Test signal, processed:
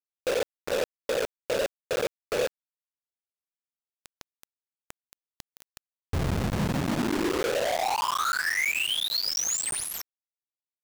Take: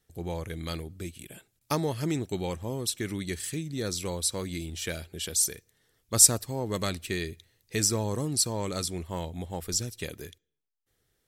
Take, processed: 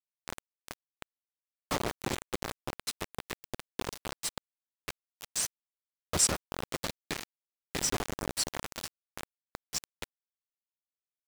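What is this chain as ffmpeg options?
-filter_complex "[0:a]afftfilt=real='hypot(re,im)*cos(2*PI*random(0))':imag='hypot(re,im)*sin(2*PI*random(1))':win_size=512:overlap=0.75,acrusher=bits=4:mix=0:aa=0.000001,acrossover=split=8500[a][b];[b]acompressor=threshold=-40dB:ratio=4:attack=1:release=60[c];[a][c]amix=inputs=2:normalize=0,volume=1.5dB"

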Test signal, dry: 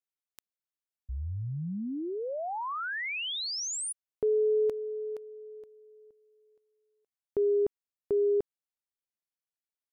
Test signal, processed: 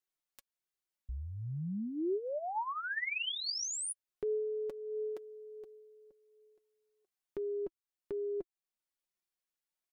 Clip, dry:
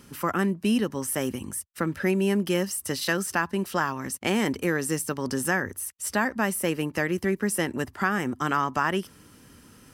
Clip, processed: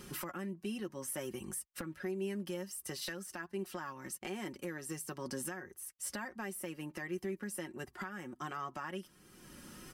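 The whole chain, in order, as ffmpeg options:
-af "aecho=1:1:5.5:0.53,acompressor=threshold=-32dB:ratio=12:attack=0.3:release=564:knee=6:detection=rms,flanger=delay=2.5:depth=1.1:regen=55:speed=1.4:shape=sinusoidal,volume=4.5dB"

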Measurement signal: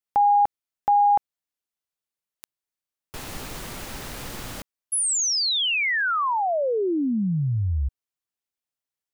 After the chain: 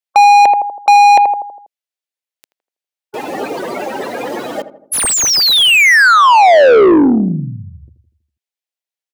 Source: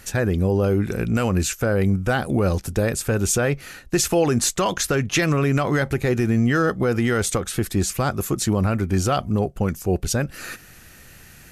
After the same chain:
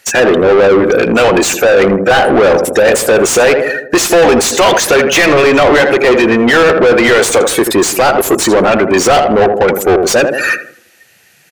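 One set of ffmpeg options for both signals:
-filter_complex "[0:a]highshelf=f=8.8k:g=5,afftdn=nr=28:nf=-33,highpass=420,equalizer=f=1.2k:t=o:w=1:g=-9.5,asplit=2[a][b];[b]adelay=81,lowpass=f=1k:p=1,volume=-11dB,asplit=2[c][d];[d]adelay=81,lowpass=f=1k:p=1,volume=0.55,asplit=2[e][f];[f]adelay=81,lowpass=f=1k:p=1,volume=0.55,asplit=2[g][h];[h]adelay=81,lowpass=f=1k:p=1,volume=0.55,asplit=2[i][j];[j]adelay=81,lowpass=f=1k:p=1,volume=0.55,asplit=2[k][l];[l]adelay=81,lowpass=f=1k:p=1,volume=0.55[m];[c][e][g][i][k][m]amix=inputs=6:normalize=0[n];[a][n]amix=inputs=2:normalize=0,asplit=2[o][p];[p]highpass=f=720:p=1,volume=33dB,asoftclip=type=tanh:threshold=-7.5dB[q];[o][q]amix=inputs=2:normalize=0,lowpass=f=2.5k:p=1,volume=-6dB,volume=8dB"

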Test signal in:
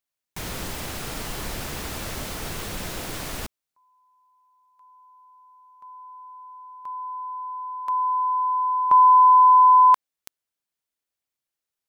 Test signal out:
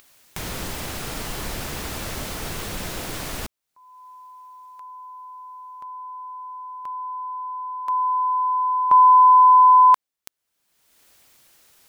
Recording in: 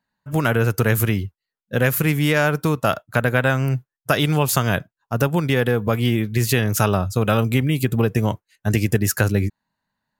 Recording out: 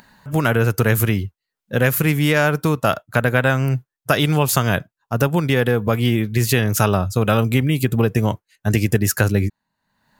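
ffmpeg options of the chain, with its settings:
-af "acompressor=mode=upward:threshold=-31dB:ratio=2.5:attack=3.5:release=508:knee=2.83:detection=peak,volume=1.5dB"

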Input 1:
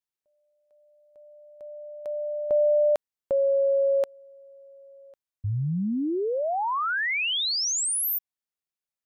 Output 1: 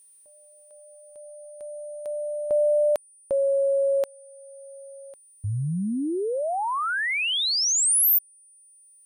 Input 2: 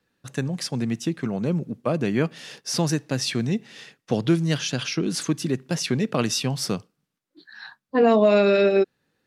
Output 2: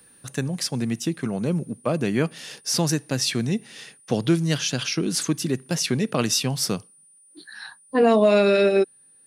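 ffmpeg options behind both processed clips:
-af "crystalizer=i=1:c=0,acompressor=mode=upward:threshold=-27dB:ratio=1.5:attack=0.22:release=707:knee=2.83:detection=peak,aeval=exprs='val(0)+0.00251*sin(2*PI*9300*n/s)':c=same"

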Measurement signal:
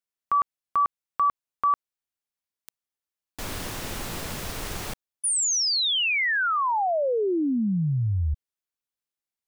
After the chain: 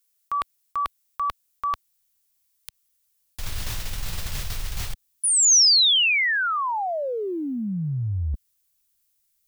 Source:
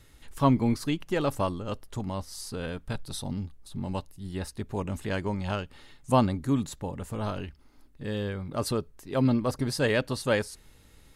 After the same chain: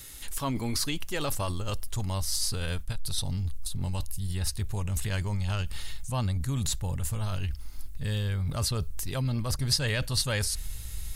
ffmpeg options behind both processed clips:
-filter_complex "[0:a]acrossover=split=5200[a][b];[b]acompressor=threshold=-50dB:ratio=4:attack=1:release=60[c];[a][c]amix=inputs=2:normalize=0,asubboost=boost=11:cutoff=90,areverse,acompressor=threshold=-29dB:ratio=6:attack=1.3:release=145:knee=1:detection=peak,areverse,crystalizer=i=5.5:c=0,volume=3dB"

